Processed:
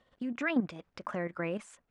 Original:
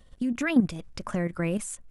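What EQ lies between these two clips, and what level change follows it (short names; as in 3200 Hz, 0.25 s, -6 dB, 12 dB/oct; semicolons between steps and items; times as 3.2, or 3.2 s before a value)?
HPF 790 Hz 6 dB/oct; air absorption 92 m; high shelf 2900 Hz -12 dB; +2.5 dB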